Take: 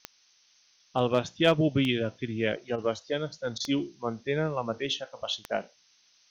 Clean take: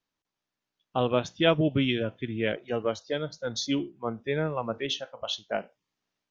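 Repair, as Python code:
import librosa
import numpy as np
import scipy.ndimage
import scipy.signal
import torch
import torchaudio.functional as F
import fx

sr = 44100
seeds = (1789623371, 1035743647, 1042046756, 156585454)

y = fx.fix_declip(x, sr, threshold_db=-12.5)
y = fx.fix_declick_ar(y, sr, threshold=10.0)
y = fx.fix_interpolate(y, sr, at_s=(2.76, 3.58), length_ms=21.0)
y = fx.noise_reduce(y, sr, print_start_s=0.06, print_end_s=0.56, reduce_db=23.0)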